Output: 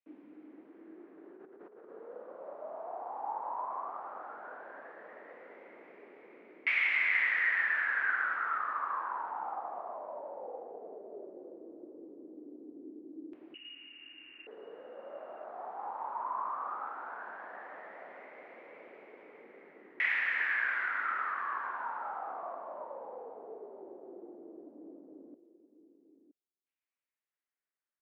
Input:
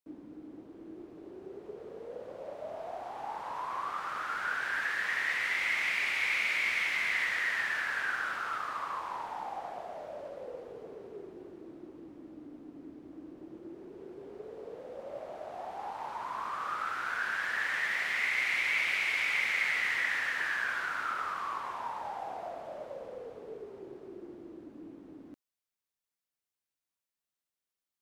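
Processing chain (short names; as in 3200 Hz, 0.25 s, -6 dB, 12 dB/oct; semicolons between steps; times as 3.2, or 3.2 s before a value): HPF 220 Hz 24 dB/oct; 1.32–1.89 negative-ratio compressor -50 dBFS, ratio -1; 13.54–14.47 inverted band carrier 3200 Hz; echo 0.969 s -13.5 dB; LFO low-pass saw down 0.15 Hz 360–2500 Hz; gain -5 dB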